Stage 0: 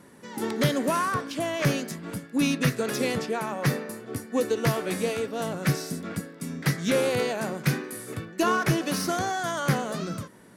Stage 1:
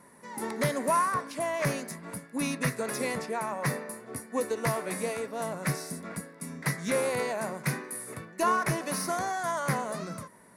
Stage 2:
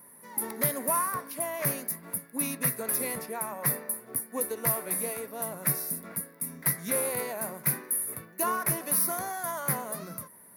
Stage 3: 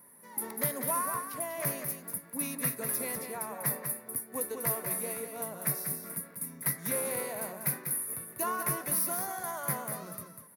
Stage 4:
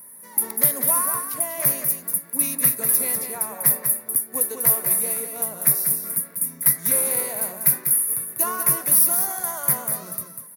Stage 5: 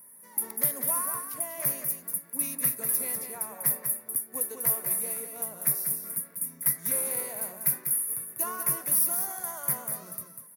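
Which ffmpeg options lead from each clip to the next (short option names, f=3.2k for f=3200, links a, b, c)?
-af "equalizer=f=100:t=o:w=0.33:g=-9,equalizer=f=315:t=o:w=0.33:g=-5,equalizer=f=630:t=o:w=0.33:g=5,equalizer=f=1k:t=o:w=0.33:g=9,equalizer=f=2k:t=o:w=0.33:g=6,equalizer=f=3.15k:t=o:w=0.33:g=-8,equalizer=f=10k:t=o:w=0.33:g=10,volume=-5.5dB"
-af "aexciter=amount=8.8:drive=9.4:freq=11k,volume=-4dB"
-af "aecho=1:1:195:0.447,volume=-4dB"
-af "highshelf=f=5.8k:g=12,volume=4dB"
-af "equalizer=f=4k:t=o:w=0.26:g=-3.5,volume=-8dB"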